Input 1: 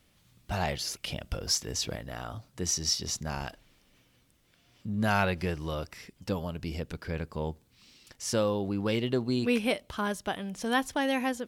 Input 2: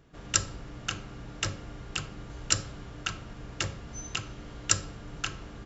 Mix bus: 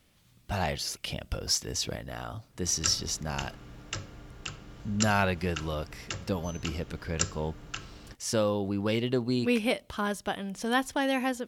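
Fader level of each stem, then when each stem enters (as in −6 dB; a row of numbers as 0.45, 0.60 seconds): +0.5, −5.0 decibels; 0.00, 2.50 seconds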